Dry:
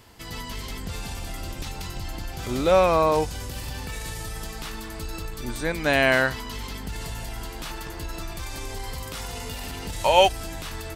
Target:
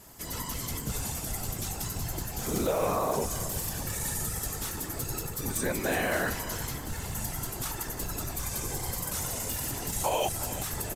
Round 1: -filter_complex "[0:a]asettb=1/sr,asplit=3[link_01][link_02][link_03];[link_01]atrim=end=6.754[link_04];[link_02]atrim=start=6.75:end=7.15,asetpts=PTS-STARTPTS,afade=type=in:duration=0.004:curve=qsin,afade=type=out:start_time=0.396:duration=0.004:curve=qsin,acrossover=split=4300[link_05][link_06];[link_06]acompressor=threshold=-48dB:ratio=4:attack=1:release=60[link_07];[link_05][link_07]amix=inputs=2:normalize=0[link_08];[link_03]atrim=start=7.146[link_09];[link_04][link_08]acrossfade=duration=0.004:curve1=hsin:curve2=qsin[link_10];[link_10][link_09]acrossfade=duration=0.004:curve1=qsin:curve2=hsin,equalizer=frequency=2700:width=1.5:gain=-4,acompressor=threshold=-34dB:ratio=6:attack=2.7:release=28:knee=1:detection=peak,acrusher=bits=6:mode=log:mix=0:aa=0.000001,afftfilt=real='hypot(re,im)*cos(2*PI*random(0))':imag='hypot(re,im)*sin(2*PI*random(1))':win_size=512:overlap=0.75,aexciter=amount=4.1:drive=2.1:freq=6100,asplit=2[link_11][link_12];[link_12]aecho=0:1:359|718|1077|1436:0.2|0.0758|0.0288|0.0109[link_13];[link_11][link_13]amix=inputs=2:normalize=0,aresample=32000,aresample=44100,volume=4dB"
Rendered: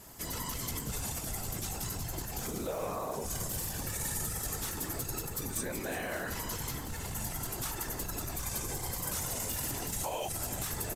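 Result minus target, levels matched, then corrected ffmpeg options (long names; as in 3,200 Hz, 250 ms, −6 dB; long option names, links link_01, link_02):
downward compressor: peak gain reduction +8.5 dB
-filter_complex "[0:a]asettb=1/sr,asplit=3[link_01][link_02][link_03];[link_01]atrim=end=6.754[link_04];[link_02]atrim=start=6.75:end=7.15,asetpts=PTS-STARTPTS,afade=type=in:duration=0.004:curve=qsin,afade=type=out:start_time=0.396:duration=0.004:curve=qsin,acrossover=split=4300[link_05][link_06];[link_06]acompressor=threshold=-48dB:ratio=4:attack=1:release=60[link_07];[link_05][link_07]amix=inputs=2:normalize=0[link_08];[link_03]atrim=start=7.146[link_09];[link_04][link_08]acrossfade=duration=0.004:curve1=hsin:curve2=qsin[link_10];[link_10][link_09]acrossfade=duration=0.004:curve1=qsin:curve2=hsin,equalizer=frequency=2700:width=1.5:gain=-4,acompressor=threshold=-24dB:ratio=6:attack=2.7:release=28:knee=1:detection=peak,acrusher=bits=6:mode=log:mix=0:aa=0.000001,afftfilt=real='hypot(re,im)*cos(2*PI*random(0))':imag='hypot(re,im)*sin(2*PI*random(1))':win_size=512:overlap=0.75,aexciter=amount=4.1:drive=2.1:freq=6100,asplit=2[link_11][link_12];[link_12]aecho=0:1:359|718|1077|1436:0.2|0.0758|0.0288|0.0109[link_13];[link_11][link_13]amix=inputs=2:normalize=0,aresample=32000,aresample=44100,volume=4dB"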